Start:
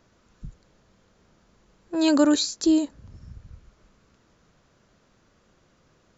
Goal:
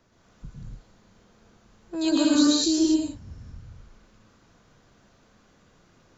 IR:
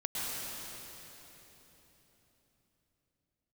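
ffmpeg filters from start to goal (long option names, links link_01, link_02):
-filter_complex "[0:a]acrossover=split=310|3000[link_01][link_02][link_03];[link_02]acompressor=threshold=-42dB:ratio=1.5[link_04];[link_01][link_04][link_03]amix=inputs=3:normalize=0[link_05];[1:a]atrim=start_sample=2205,afade=type=out:start_time=0.35:duration=0.01,atrim=end_sample=15876[link_06];[link_05][link_06]afir=irnorm=-1:irlink=0"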